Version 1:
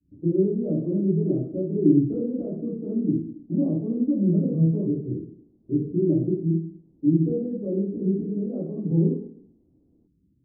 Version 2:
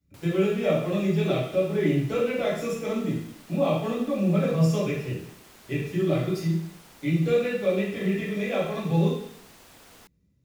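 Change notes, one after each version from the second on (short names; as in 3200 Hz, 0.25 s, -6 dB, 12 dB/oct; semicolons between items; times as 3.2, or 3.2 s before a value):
speech -9.5 dB; master: remove ladder low-pass 350 Hz, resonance 60%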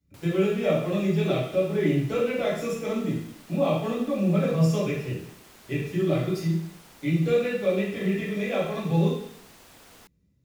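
none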